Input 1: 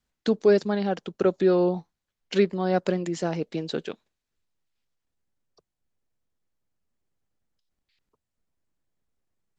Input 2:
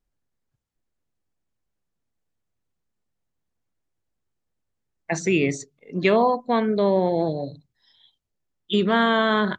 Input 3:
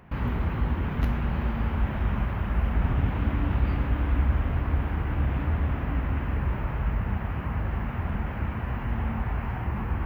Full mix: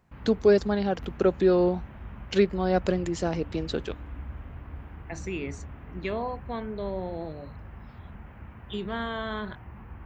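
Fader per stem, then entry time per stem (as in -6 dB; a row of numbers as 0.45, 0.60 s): -0.5, -13.0, -15.0 dB; 0.00, 0.00, 0.00 s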